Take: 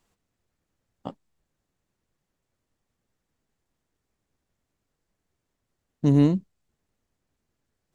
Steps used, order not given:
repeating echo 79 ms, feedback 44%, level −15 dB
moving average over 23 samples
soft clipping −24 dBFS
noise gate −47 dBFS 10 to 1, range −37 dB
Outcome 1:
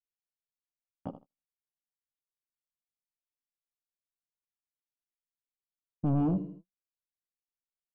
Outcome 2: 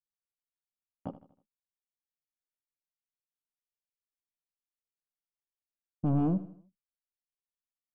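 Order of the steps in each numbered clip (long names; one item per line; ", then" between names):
repeating echo, then soft clipping, then moving average, then noise gate
soft clipping, then moving average, then noise gate, then repeating echo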